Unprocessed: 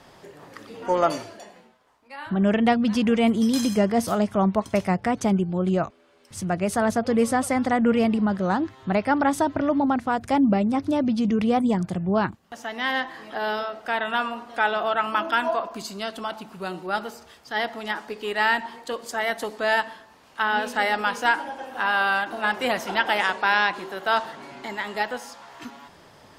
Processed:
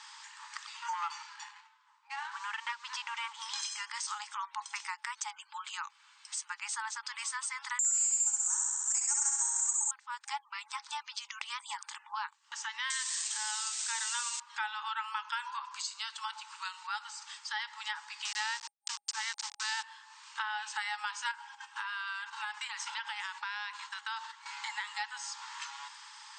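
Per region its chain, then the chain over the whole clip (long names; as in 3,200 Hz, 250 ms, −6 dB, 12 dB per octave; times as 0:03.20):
0:00.93–0:03.62: RIAA equalisation playback + leveller curve on the samples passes 1
0:07.79–0:09.91: flutter between parallel walls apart 11.2 metres, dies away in 1.3 s + bad sample-rate conversion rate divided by 6×, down filtered, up zero stuff
0:12.90–0:14.40: spike at every zero crossing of −18 dBFS + high-shelf EQ 5,800 Hz +10.5 dB
0:18.25–0:19.83: hold until the input has moved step −28.5 dBFS + parametric band 5,300 Hz +9.5 dB 0.93 octaves
0:21.31–0:24.46: noise gate −36 dBFS, range −12 dB + downward compressor 2.5 to 1, threshold −31 dBFS
whole clip: brick-wall band-pass 820–8,700 Hz; high-shelf EQ 3,900 Hz +12 dB; downward compressor 3 to 1, threshold −38 dBFS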